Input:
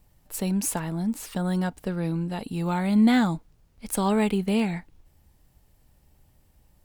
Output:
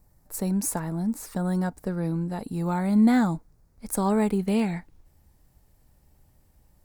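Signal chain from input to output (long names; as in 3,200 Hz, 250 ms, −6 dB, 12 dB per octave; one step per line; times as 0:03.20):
parametric band 3,000 Hz −14 dB 0.76 octaves, from 0:04.39 −5.5 dB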